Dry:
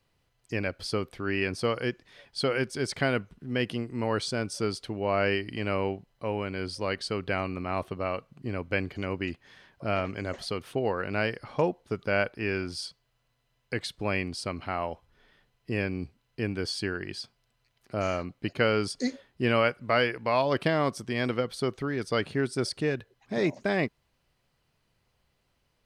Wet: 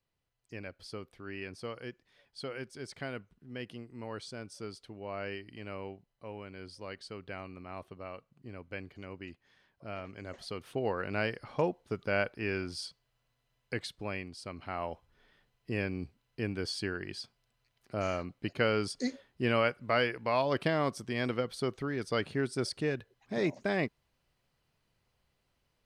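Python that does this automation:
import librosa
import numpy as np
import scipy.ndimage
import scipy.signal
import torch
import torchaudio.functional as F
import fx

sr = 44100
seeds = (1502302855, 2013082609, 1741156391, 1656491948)

y = fx.gain(x, sr, db=fx.line((10.0, -13.0), (10.87, -4.0), (13.74, -4.0), (14.33, -11.5), (14.9, -4.0)))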